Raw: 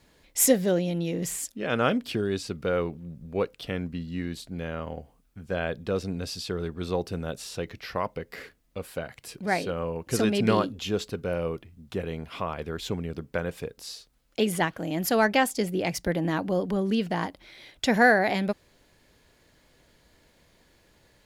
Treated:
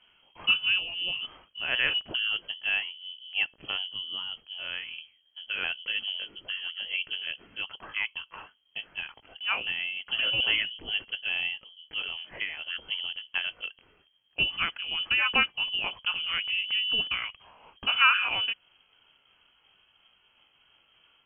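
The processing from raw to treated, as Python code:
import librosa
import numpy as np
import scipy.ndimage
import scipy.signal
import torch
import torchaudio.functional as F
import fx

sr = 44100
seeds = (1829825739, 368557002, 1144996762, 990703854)

y = fx.pitch_ramps(x, sr, semitones=2.0, every_ms=403)
y = fx.freq_invert(y, sr, carrier_hz=3200)
y = y * 10.0 ** (-1.5 / 20.0)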